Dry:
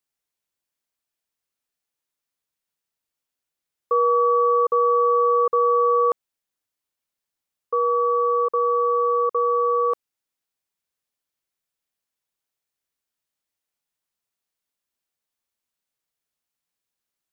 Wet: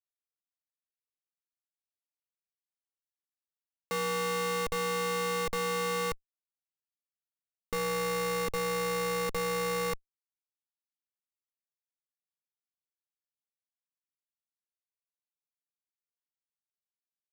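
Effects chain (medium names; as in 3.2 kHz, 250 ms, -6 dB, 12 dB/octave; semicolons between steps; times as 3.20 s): Schmitt trigger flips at -34 dBFS; trim -6 dB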